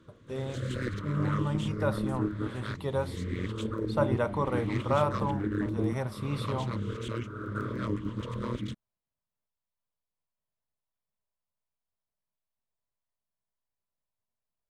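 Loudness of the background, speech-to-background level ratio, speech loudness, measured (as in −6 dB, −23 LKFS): −34.5 LKFS, 1.0 dB, −33.5 LKFS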